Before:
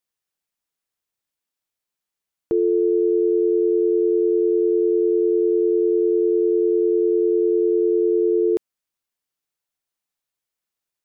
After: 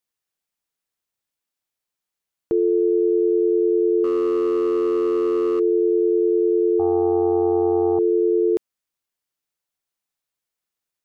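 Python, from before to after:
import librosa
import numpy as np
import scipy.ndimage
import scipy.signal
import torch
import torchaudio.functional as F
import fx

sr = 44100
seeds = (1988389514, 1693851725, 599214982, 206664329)

y = fx.overload_stage(x, sr, gain_db=16.5, at=(4.04, 5.6))
y = fx.doppler_dist(y, sr, depth_ms=0.26, at=(6.79, 7.99))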